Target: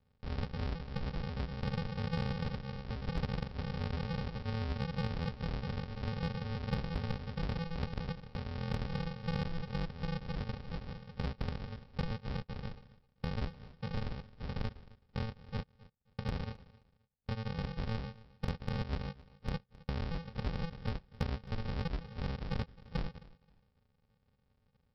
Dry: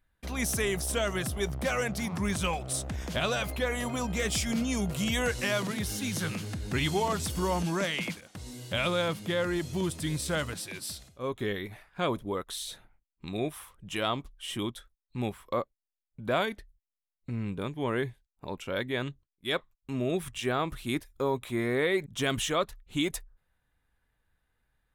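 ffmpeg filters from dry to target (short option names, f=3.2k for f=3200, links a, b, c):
-filter_complex "[0:a]highpass=f=85:w=0.5412,highpass=f=85:w=1.3066,lowshelf=f=150:g=2.5,acompressor=threshold=-41dB:ratio=6,aresample=11025,acrusher=samples=33:mix=1:aa=0.000001,aresample=44100,aeval=exprs='0.0251*(cos(1*acos(clip(val(0)/0.0251,-1,1)))-cos(1*PI/2))+0.00112*(cos(3*acos(clip(val(0)/0.0251,-1,1)))-cos(3*PI/2))':c=same,asplit=2[a][b];[b]aecho=0:1:264|528:0.0944|0.0217[c];[a][c]amix=inputs=2:normalize=0,volume=7.5dB"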